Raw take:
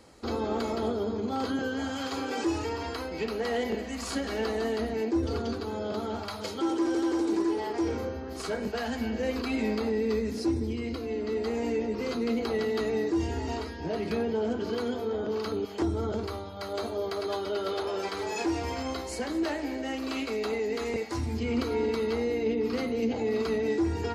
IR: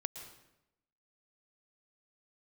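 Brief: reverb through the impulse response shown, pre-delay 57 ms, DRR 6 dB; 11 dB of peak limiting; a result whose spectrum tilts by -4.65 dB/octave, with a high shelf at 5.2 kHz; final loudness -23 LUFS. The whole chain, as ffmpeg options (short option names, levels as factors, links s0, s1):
-filter_complex "[0:a]highshelf=f=5200:g=-6.5,alimiter=level_in=1.58:limit=0.0631:level=0:latency=1,volume=0.631,asplit=2[s0][s1];[1:a]atrim=start_sample=2205,adelay=57[s2];[s1][s2]afir=irnorm=-1:irlink=0,volume=0.531[s3];[s0][s3]amix=inputs=2:normalize=0,volume=3.98"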